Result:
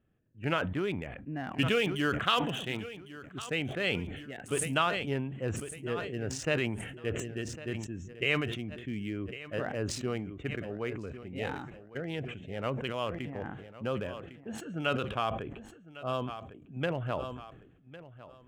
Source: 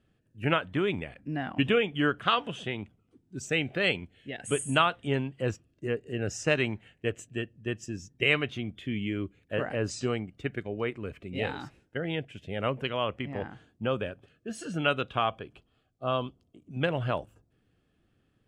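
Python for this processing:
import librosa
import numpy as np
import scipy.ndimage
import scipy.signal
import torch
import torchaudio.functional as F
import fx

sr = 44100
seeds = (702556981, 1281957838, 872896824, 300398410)

y = fx.wiener(x, sr, points=9)
y = fx.high_shelf(y, sr, hz=3200.0, db=10.0, at=(1.47, 3.48))
y = fx.echo_feedback(y, sr, ms=1104, feedback_pct=21, wet_db=-17.0)
y = fx.sustainer(y, sr, db_per_s=49.0)
y = y * 10.0 ** (-4.5 / 20.0)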